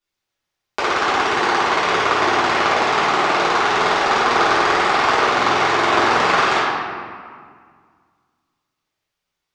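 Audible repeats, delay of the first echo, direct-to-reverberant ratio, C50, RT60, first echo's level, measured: no echo audible, no echo audible, −12.5 dB, −2.5 dB, 1.9 s, no echo audible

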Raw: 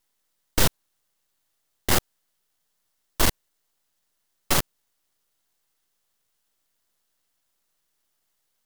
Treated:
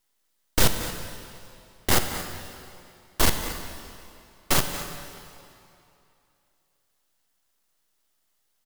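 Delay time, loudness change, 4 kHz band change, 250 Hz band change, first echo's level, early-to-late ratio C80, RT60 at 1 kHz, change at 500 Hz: 229 ms, −1.5 dB, +1.0 dB, +1.0 dB, −13.5 dB, 7.0 dB, 2.8 s, +1.0 dB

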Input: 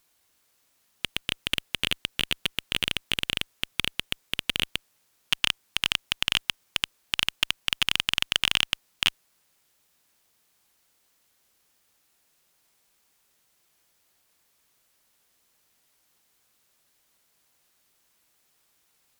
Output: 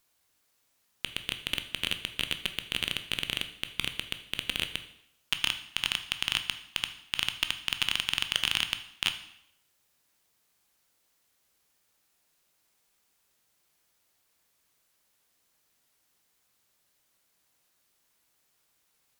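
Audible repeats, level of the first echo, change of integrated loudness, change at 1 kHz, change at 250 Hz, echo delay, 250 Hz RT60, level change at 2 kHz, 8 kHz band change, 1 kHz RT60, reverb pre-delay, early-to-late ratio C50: no echo audible, no echo audible, −4.0 dB, −4.0 dB, −4.0 dB, no echo audible, 0.70 s, −4.0 dB, −4.0 dB, 0.75 s, 7 ms, 11.5 dB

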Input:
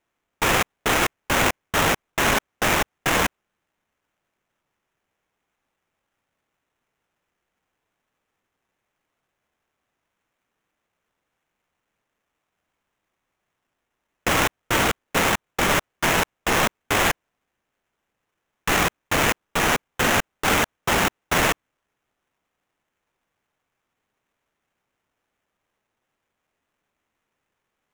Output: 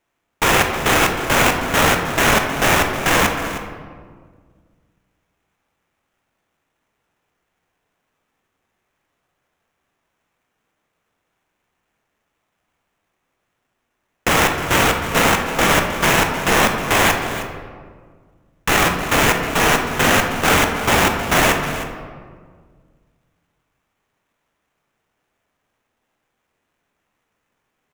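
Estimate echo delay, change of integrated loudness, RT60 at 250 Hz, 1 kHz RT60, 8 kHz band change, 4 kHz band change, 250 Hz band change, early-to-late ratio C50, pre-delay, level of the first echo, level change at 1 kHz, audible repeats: 313 ms, +5.5 dB, 2.2 s, 1.6 s, +5.0 dB, +5.0 dB, +6.5 dB, 5.0 dB, 16 ms, −13.0 dB, +6.0 dB, 1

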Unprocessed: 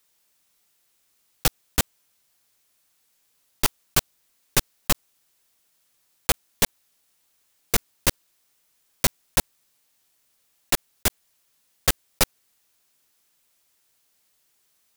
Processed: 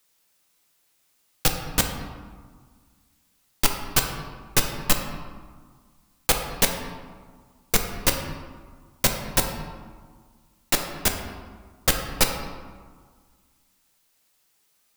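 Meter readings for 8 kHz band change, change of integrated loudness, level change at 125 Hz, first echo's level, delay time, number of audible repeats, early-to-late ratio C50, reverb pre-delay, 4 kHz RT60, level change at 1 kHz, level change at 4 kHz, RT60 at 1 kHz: +0.5 dB, +0.5 dB, +1.5 dB, no echo audible, no echo audible, no echo audible, 5.5 dB, 4 ms, 0.85 s, +2.5 dB, +1.0 dB, 1.7 s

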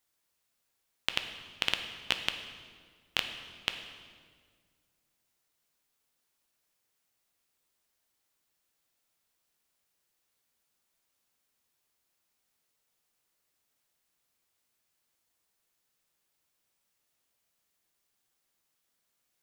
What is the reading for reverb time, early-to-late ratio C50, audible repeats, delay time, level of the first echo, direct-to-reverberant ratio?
1.8 s, 8.0 dB, no echo audible, no echo audible, no echo audible, 6.0 dB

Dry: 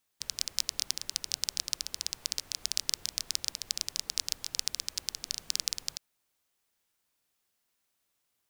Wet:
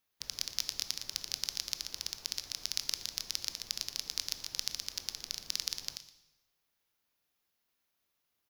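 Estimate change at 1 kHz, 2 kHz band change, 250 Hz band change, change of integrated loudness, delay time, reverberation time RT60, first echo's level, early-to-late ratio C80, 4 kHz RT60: −1.5 dB, −1.5 dB, −1.5 dB, −3.5 dB, 118 ms, 1.0 s, −15.5 dB, 12.5 dB, 0.95 s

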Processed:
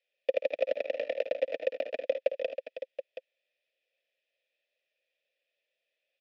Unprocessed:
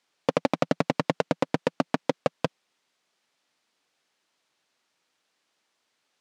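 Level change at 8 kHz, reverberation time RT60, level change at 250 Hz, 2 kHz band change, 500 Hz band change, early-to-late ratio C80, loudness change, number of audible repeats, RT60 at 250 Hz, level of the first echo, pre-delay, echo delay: below −20 dB, no reverb audible, −25.0 dB, −6.5 dB, −1.0 dB, no reverb audible, −5.0 dB, 4, no reverb audible, −15.5 dB, no reverb audible, 54 ms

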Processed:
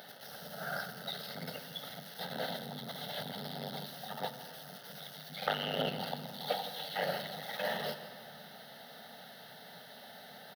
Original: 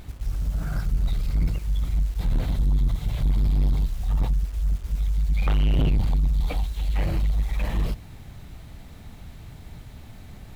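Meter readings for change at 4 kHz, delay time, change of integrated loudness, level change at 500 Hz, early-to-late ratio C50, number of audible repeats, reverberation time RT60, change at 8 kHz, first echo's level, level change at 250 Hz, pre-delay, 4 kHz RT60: +4.0 dB, 165 ms, −13.5 dB, +1.5 dB, 10.0 dB, 1, 2.3 s, can't be measured, −16.5 dB, −12.0 dB, 4 ms, 1.4 s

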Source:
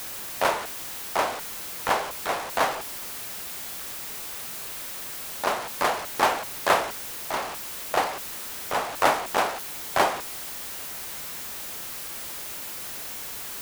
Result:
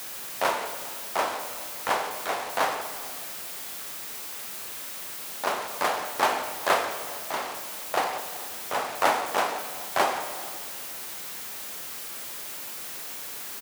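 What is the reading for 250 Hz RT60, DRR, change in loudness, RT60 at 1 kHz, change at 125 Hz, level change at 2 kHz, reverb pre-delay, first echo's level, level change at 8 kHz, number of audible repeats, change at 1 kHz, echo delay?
2.1 s, 7.5 dB, −1.5 dB, 1.7 s, −5.5 dB, −1.5 dB, 22 ms, −23.5 dB, −1.5 dB, 1, −1.5 dB, 417 ms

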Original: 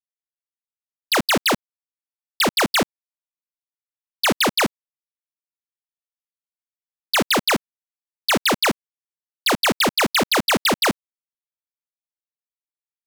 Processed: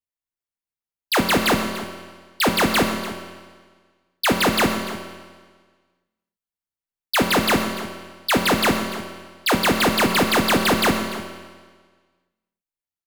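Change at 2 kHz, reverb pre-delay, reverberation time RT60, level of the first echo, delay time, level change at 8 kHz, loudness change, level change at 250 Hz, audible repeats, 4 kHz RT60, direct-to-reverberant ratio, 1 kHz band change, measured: +0.5 dB, 5 ms, 1.5 s, −15.5 dB, 292 ms, −1.5 dB, −0.5 dB, +3.5 dB, 1, 1.4 s, 3.0 dB, +1.5 dB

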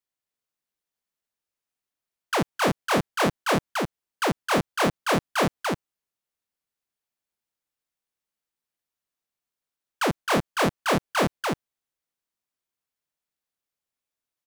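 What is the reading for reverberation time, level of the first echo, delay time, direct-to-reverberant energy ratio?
no reverb audible, −3.0 dB, 265 ms, no reverb audible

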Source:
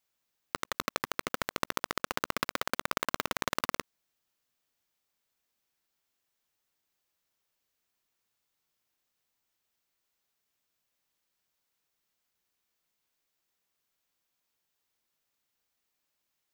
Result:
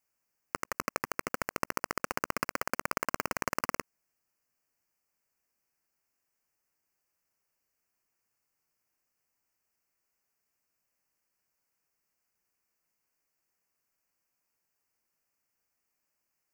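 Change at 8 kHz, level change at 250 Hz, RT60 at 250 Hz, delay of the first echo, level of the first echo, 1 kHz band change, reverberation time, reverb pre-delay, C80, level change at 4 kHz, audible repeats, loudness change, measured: 0.0 dB, 0.0 dB, no reverb audible, no echo audible, no echo audible, 0.0 dB, no reverb audible, no reverb audible, no reverb audible, −7.0 dB, no echo audible, −0.5 dB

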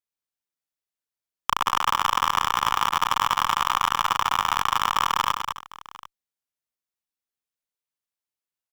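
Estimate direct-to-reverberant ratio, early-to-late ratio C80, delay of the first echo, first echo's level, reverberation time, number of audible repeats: no reverb audible, no reverb audible, 95 ms, −19.0 dB, no reverb audible, 4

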